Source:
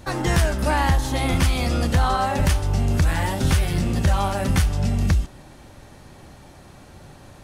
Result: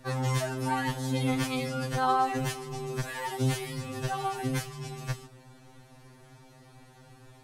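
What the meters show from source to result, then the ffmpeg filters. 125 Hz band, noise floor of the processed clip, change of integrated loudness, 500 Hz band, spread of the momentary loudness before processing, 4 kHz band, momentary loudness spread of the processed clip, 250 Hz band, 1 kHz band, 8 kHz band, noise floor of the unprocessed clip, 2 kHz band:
-11.0 dB, -55 dBFS, -9.5 dB, -6.5 dB, 2 LU, -8.5 dB, 10 LU, -8.0 dB, -5.0 dB, -8.5 dB, -46 dBFS, -8.5 dB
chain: -af "afftfilt=real='re*2.45*eq(mod(b,6),0)':imag='im*2.45*eq(mod(b,6),0)':win_size=2048:overlap=0.75,volume=-6dB"

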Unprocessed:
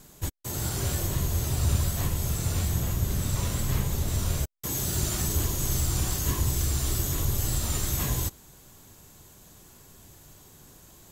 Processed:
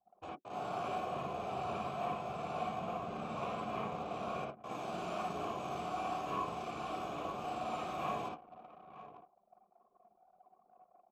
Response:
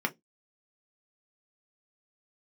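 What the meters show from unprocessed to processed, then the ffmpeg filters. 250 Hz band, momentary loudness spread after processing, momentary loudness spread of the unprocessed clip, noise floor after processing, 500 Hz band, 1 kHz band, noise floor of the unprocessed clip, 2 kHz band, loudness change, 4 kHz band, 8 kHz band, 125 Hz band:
-9.5 dB, 11 LU, 4 LU, -72 dBFS, -1.0 dB, +4.5 dB, -53 dBFS, -7.0 dB, -12.0 dB, -15.0 dB, -30.5 dB, -23.0 dB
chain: -filter_complex "[0:a]asplit=3[a][b][c];[a]bandpass=f=730:t=q:w=8,volume=0dB[d];[b]bandpass=f=1.09k:t=q:w=8,volume=-6dB[e];[c]bandpass=f=2.44k:t=q:w=8,volume=-9dB[f];[d][e][f]amix=inputs=3:normalize=0,highshelf=f=3.7k:g=-10,aecho=1:1:910:0.168,asplit=2[g][h];[1:a]atrim=start_sample=2205,lowshelf=f=300:g=3,adelay=55[i];[h][i]afir=irnorm=-1:irlink=0,volume=-4.5dB[j];[g][j]amix=inputs=2:normalize=0,anlmdn=0.0000631,lowshelf=f=87:g=-11,volume=7dB"

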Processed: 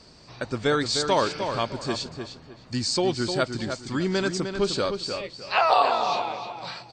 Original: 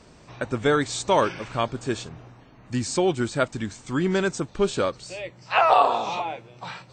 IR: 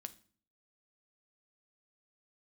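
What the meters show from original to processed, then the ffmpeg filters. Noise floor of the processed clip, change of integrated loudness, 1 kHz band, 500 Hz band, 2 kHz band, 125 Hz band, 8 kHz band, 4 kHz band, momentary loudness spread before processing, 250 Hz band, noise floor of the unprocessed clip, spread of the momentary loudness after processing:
-51 dBFS, -1.5 dB, -1.5 dB, -1.5 dB, -1.0 dB, -2.0 dB, 0.0 dB, +5.0 dB, 16 LU, -1.5 dB, -51 dBFS, 14 LU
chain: -filter_complex "[0:a]equalizer=f=4.6k:w=3.2:g=15,asplit=2[a][b];[b]adelay=305,lowpass=f=4k:p=1,volume=-7dB,asplit=2[c][d];[d]adelay=305,lowpass=f=4k:p=1,volume=0.28,asplit=2[e][f];[f]adelay=305,lowpass=f=4k:p=1,volume=0.28[g];[c][e][g]amix=inputs=3:normalize=0[h];[a][h]amix=inputs=2:normalize=0,volume=-2.5dB"

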